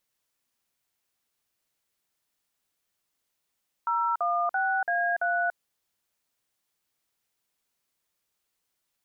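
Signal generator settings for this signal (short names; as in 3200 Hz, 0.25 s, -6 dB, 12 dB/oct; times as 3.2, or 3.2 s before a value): DTMF "016A3", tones 0.287 s, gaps 49 ms, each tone -26 dBFS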